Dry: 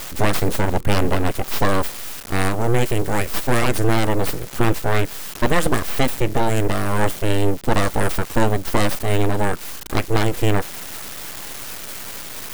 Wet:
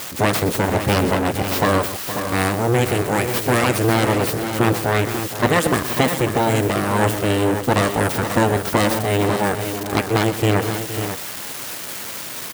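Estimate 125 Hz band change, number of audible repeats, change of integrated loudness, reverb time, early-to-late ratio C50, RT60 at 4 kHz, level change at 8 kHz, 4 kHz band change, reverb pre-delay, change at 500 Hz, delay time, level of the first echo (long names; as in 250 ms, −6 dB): +1.0 dB, 3, +2.5 dB, no reverb audible, no reverb audible, no reverb audible, +3.0 dB, +3.0 dB, no reverb audible, +3.0 dB, 123 ms, −12.5 dB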